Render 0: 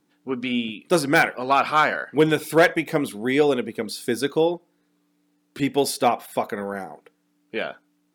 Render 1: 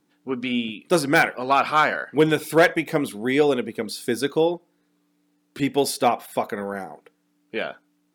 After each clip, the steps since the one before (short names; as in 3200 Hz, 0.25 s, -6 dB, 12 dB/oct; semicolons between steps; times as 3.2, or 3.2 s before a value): nothing audible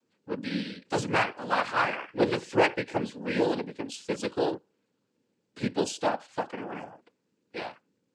noise vocoder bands 8; gain -7 dB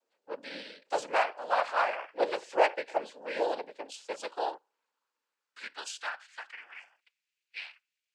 high-pass sweep 620 Hz -> 2400 Hz, 3.93–7.01; gain -5 dB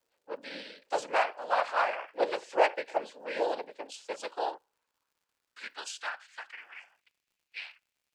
crackle 120/s -63 dBFS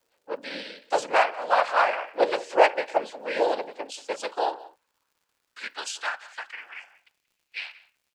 outdoor echo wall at 31 m, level -19 dB; gain +6.5 dB